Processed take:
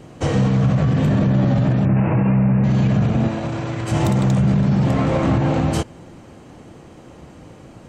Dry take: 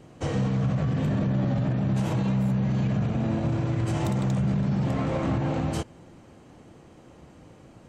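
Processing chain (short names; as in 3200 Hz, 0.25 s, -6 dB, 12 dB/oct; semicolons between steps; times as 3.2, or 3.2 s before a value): 1.85–2.64 steep low-pass 2700 Hz 96 dB/oct; 3.28–3.92 low shelf 370 Hz -10 dB; gain +8.5 dB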